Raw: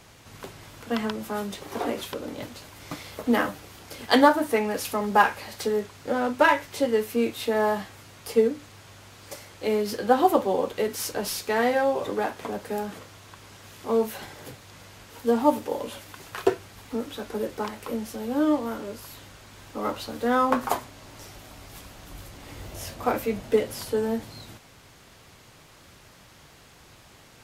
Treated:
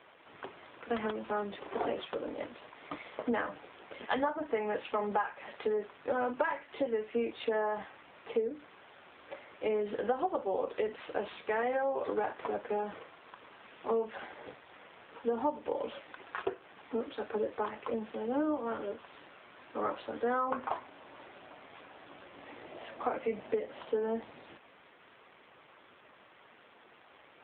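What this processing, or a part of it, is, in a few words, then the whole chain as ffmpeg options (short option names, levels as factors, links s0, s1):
voicemail: -filter_complex "[0:a]asplit=3[s0][s1][s2];[s0]afade=t=out:st=9.34:d=0.02[s3];[s1]adynamicequalizer=threshold=0.00447:dfrequency=110:dqfactor=2.8:tfrequency=110:tqfactor=2.8:attack=5:release=100:ratio=0.375:range=1.5:mode=boostabove:tftype=bell,afade=t=in:st=9.34:d=0.02,afade=t=out:st=9.87:d=0.02[s4];[s2]afade=t=in:st=9.87:d=0.02[s5];[s3][s4][s5]amix=inputs=3:normalize=0,highpass=330,lowpass=3100,acompressor=threshold=0.0447:ratio=12" -ar 8000 -c:a libopencore_amrnb -b:a 7400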